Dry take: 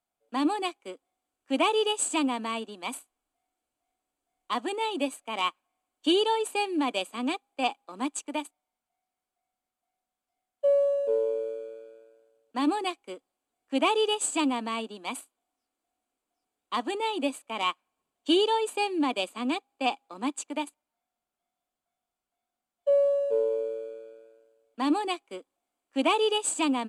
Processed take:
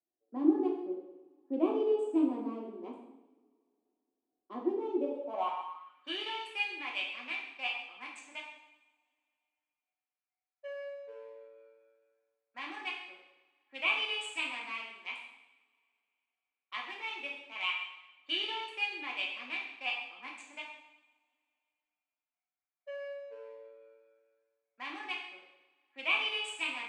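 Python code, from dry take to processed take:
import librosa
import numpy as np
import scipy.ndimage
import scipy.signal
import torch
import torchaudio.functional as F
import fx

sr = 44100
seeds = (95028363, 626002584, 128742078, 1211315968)

y = fx.wiener(x, sr, points=15)
y = fx.rev_double_slope(y, sr, seeds[0], early_s=0.85, late_s=2.8, knee_db=-26, drr_db=-3.0)
y = fx.filter_sweep_bandpass(y, sr, from_hz=350.0, to_hz=2300.0, start_s=4.94, end_s=6.34, q=3.4)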